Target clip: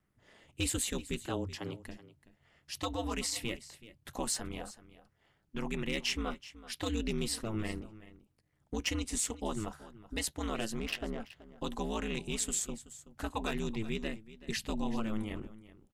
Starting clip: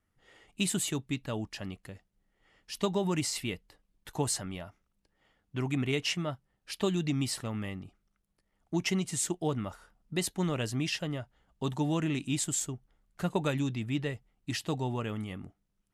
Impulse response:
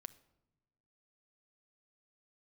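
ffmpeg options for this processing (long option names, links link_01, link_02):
-filter_complex "[0:a]asplit=3[link_01][link_02][link_03];[link_01]afade=type=out:start_time=14.55:duration=0.02[link_04];[link_02]asubboost=boost=6:cutoff=92,afade=type=in:start_time=14.55:duration=0.02,afade=type=out:start_time=15.22:duration=0.02[link_05];[link_03]afade=type=in:start_time=15.22:duration=0.02[link_06];[link_04][link_05][link_06]amix=inputs=3:normalize=0,acrossover=split=710|5500[link_07][link_08][link_09];[link_07]alimiter=level_in=4dB:limit=-24dB:level=0:latency=1:release=78,volume=-4dB[link_10];[link_10][link_08][link_09]amix=inputs=3:normalize=0,aphaser=in_gain=1:out_gain=1:delay=2.2:decay=0.23:speed=0.13:type=triangular,volume=22.5dB,asoftclip=hard,volume=-22.5dB,aeval=exprs='val(0)*sin(2*PI*110*n/s)':channel_layout=same,asettb=1/sr,asplit=3[link_11][link_12][link_13];[link_11]atrim=end=1.264[link_14];[link_12]atrim=start=1.26:end=1.8,asetpts=PTS-STARTPTS,afade=type=in:duration=0.004:curve=qsin,afade=type=out:start_time=0.536:duration=0.004:curve=qsin,afreqshift=91[link_15];[link_13]atrim=start=1.796[link_16];[link_14][link_15]acrossfade=duration=0.004:curve1=hsin:curve2=qsin[link_17];[link_17][link_16]acrossfade=duration=0.004:curve1=qsin:curve2=hsin,asettb=1/sr,asplit=3[link_18][link_19][link_20];[link_18]atrim=end=10.794[link_21];[link_19]atrim=start=10.79:end=11.2,asetpts=PTS-STARTPTS,afade=type=in:duration=0.004:curve=qsin,afade=type=out:start_time=0.406:duration=0.004:curve=qsin,adynamicsmooth=sensitivity=5.5:basefreq=1200[link_22];[link_20]atrim=start=11.196[link_23];[link_21][link_22]acrossfade=duration=0.004:curve1=hsin:curve2=qsin[link_24];[link_24][link_23]acrossfade=duration=0.004:curve1=qsin:curve2=hsin,aecho=1:1:378:0.141,volume=1.5dB"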